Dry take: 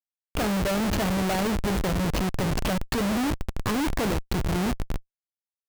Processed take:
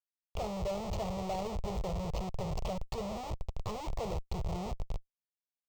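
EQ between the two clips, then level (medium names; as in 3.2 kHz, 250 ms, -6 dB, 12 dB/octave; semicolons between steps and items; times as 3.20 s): dynamic bell 3.6 kHz, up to -4 dB, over -44 dBFS, Q 0.87; boxcar filter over 4 samples; static phaser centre 660 Hz, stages 4; -6.5 dB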